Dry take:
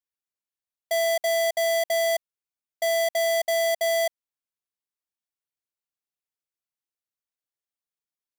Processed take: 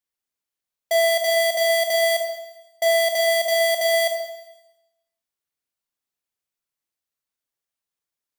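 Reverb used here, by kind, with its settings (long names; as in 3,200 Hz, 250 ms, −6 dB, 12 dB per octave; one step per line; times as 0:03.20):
four-comb reverb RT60 0.97 s, combs from 27 ms, DRR 3.5 dB
level +3.5 dB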